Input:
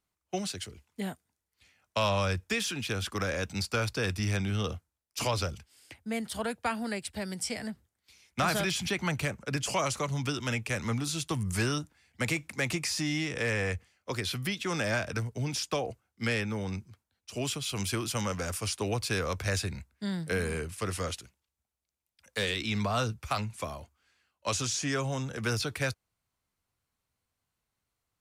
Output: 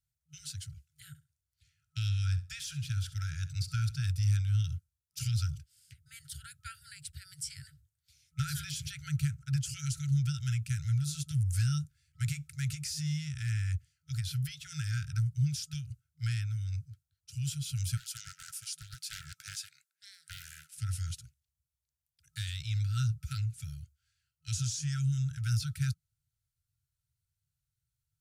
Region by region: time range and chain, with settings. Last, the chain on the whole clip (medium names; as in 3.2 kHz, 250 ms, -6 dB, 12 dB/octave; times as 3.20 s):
1.08–4.04 s: treble shelf 10 kHz -5.5 dB + flutter echo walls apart 11.4 m, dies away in 0.27 s
17.97–20.78 s: high-pass 490 Hz 24 dB/octave + loudspeaker Doppler distortion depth 0.61 ms
whole clip: peaking EQ 160 Hz +8.5 dB 3 oct; FFT band-reject 160–1300 Hz; peaking EQ 2 kHz -12.5 dB 1.5 oct; trim -3 dB